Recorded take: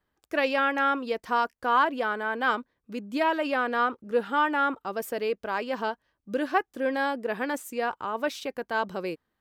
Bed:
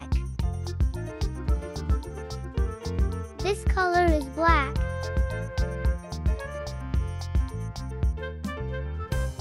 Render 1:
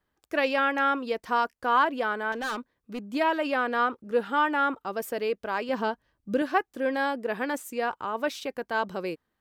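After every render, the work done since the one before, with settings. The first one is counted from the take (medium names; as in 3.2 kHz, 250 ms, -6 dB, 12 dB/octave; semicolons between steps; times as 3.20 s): 2.32–3.15 s: hard clipper -28.5 dBFS; 5.69–6.42 s: bass shelf 290 Hz +8 dB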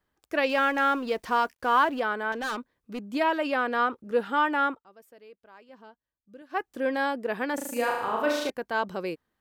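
0.49–2.00 s: companding laws mixed up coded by mu; 4.66–6.65 s: dip -22 dB, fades 0.16 s; 7.54–8.50 s: flutter echo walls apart 6.4 m, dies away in 0.91 s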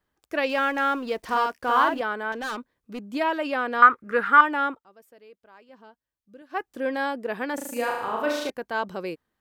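1.18–2.01 s: doubling 49 ms -3 dB; 3.82–4.41 s: high-order bell 1.6 kHz +14.5 dB 1.3 oct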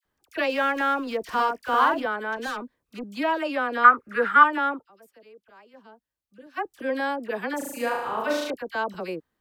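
phase dispersion lows, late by 49 ms, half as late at 1.3 kHz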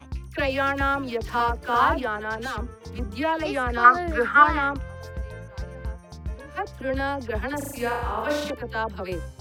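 add bed -7.5 dB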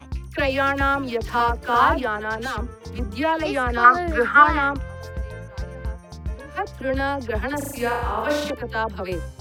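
trim +3 dB; peak limiter -2 dBFS, peak gain reduction 2 dB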